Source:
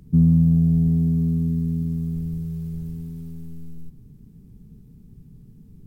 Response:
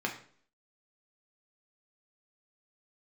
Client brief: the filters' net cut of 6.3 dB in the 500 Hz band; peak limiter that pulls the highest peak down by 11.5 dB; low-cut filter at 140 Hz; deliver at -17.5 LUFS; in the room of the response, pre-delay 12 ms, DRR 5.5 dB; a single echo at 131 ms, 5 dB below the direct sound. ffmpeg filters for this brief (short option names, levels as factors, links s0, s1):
-filter_complex "[0:a]highpass=140,equalizer=f=500:t=o:g=-8.5,alimiter=limit=0.0708:level=0:latency=1,aecho=1:1:131:0.562,asplit=2[s0][s1];[1:a]atrim=start_sample=2205,adelay=12[s2];[s1][s2]afir=irnorm=-1:irlink=0,volume=0.266[s3];[s0][s3]amix=inputs=2:normalize=0,volume=6.68"